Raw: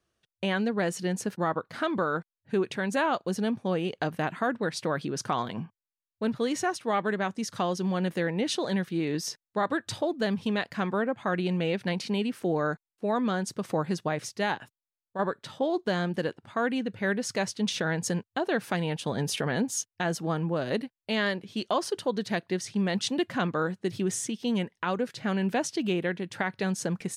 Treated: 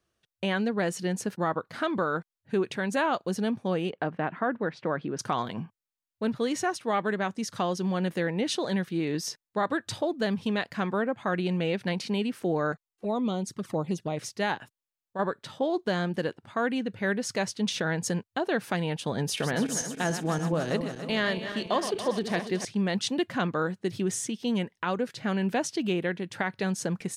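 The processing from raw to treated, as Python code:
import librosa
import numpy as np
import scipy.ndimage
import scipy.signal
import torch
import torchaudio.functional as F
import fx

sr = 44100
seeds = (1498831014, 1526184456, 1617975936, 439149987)

y = fx.bandpass_edges(x, sr, low_hz=130.0, high_hz=2100.0, at=(3.9, 5.19))
y = fx.env_flanger(y, sr, rest_ms=2.9, full_db=-24.5, at=(12.72, 14.17))
y = fx.reverse_delay_fb(y, sr, ms=142, feedback_pct=72, wet_db=-9.0, at=(19.25, 22.65))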